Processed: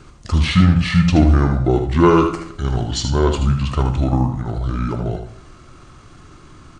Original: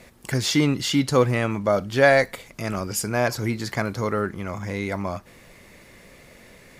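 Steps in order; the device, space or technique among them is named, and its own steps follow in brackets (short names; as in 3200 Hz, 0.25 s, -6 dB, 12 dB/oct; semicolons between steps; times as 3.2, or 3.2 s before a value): monster voice (pitch shift -8.5 st; low shelf 160 Hz +9 dB; echo 78 ms -8 dB; reverb RT60 0.80 s, pre-delay 8 ms, DRR 8 dB); gain +2 dB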